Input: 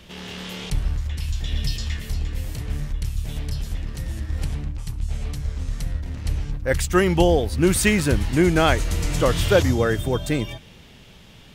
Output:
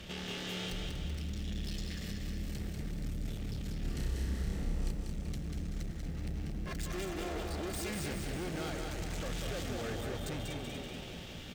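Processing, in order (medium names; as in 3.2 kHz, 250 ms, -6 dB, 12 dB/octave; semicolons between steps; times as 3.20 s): 6.56–7.89 s: comb filter that takes the minimum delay 2.9 ms; valve stage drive 31 dB, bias 0.45; peaking EQ 11 kHz -11 dB 0.2 oct; frequency-shifting echo 240 ms, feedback 34%, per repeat +130 Hz, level -9.5 dB; compression 6:1, threshold -39 dBFS, peak gain reduction 9 dB; band-stop 1 kHz, Q 6.9; 3.78–4.91 s: flutter echo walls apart 5.4 m, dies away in 0.85 s; bit-crushed delay 191 ms, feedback 55%, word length 11-bit, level -4 dB; trim +1 dB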